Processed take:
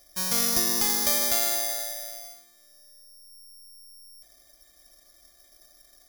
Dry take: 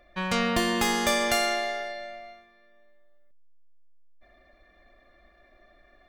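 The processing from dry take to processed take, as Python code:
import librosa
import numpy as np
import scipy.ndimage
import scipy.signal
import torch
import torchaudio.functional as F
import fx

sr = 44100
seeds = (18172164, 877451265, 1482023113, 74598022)

y = (np.kron(scipy.signal.resample_poly(x, 1, 8), np.eye(8)[0]) * 8)[:len(x)]
y = y * 10.0 ** (-7.5 / 20.0)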